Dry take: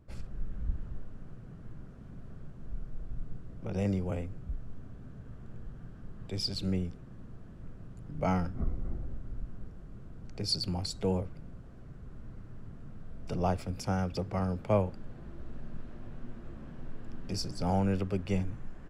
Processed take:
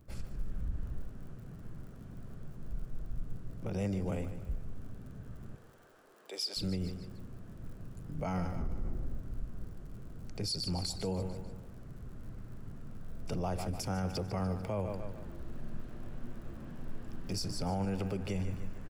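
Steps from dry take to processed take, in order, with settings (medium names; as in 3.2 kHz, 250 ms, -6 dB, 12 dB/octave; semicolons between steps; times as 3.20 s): 5.55–6.57 s: high-pass 400 Hz 24 dB/octave; feedback delay 148 ms, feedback 45%, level -12.5 dB; crackle 74 per s -55 dBFS; treble shelf 8.1 kHz +10 dB; peak limiter -26.5 dBFS, peak gain reduction 11.5 dB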